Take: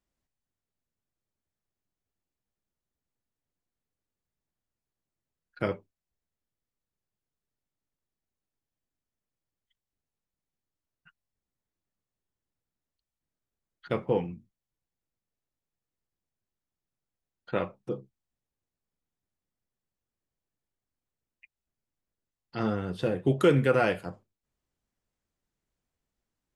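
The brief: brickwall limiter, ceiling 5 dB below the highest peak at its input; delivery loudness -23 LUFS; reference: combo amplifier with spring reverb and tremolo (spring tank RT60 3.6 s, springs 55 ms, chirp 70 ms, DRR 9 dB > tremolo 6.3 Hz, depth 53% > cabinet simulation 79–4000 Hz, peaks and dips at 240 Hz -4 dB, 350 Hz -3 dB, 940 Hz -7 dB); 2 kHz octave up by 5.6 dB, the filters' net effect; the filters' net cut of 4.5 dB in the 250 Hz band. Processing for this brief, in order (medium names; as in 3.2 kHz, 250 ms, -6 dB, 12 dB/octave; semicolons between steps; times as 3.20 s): peaking EQ 250 Hz -3 dB; peaking EQ 2 kHz +8.5 dB; peak limiter -14 dBFS; spring tank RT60 3.6 s, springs 55 ms, chirp 70 ms, DRR 9 dB; tremolo 6.3 Hz, depth 53%; cabinet simulation 79–4000 Hz, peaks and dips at 240 Hz -4 dB, 350 Hz -3 dB, 940 Hz -7 dB; trim +11 dB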